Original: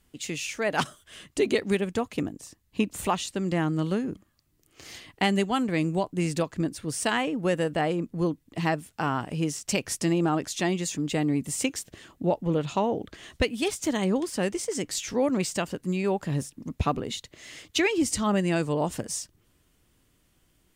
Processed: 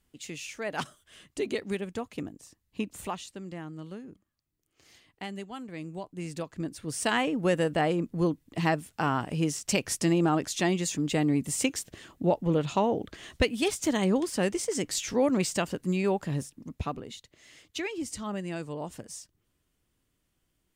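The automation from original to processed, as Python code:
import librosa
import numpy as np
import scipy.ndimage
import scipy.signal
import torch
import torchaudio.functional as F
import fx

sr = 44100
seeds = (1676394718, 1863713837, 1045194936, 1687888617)

y = fx.gain(x, sr, db=fx.line((2.95, -7.0), (3.63, -14.5), (5.66, -14.5), (6.49, -8.0), (7.19, 0.0), (16.03, 0.0), (17.15, -10.0)))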